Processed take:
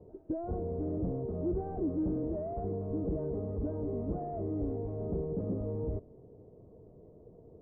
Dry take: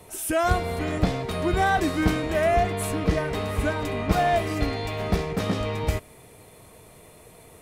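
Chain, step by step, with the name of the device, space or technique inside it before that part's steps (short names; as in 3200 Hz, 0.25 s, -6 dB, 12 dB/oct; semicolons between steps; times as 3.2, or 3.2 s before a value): overdriven synthesiser ladder filter (soft clip -25 dBFS, distortion -8 dB; ladder low-pass 560 Hz, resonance 30%); gain +2.5 dB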